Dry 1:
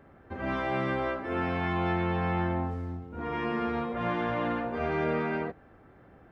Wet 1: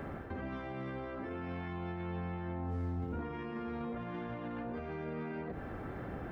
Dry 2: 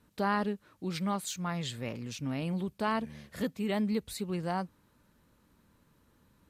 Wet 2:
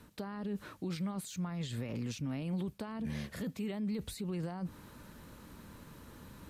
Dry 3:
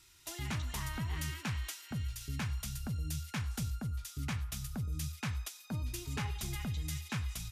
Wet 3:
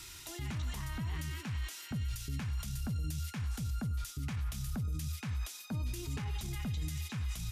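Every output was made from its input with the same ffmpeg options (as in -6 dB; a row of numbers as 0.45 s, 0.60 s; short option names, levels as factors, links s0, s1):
-filter_complex "[0:a]areverse,acompressor=threshold=0.00891:ratio=16,areverse,alimiter=level_in=10:limit=0.0631:level=0:latency=1:release=26,volume=0.1,acrossover=split=370[s0][s1];[s1]acompressor=threshold=0.00126:ratio=6[s2];[s0][s2]amix=inputs=2:normalize=0,volume=5.01"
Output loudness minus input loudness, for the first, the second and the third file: -10.0 LU, -5.0 LU, +0.5 LU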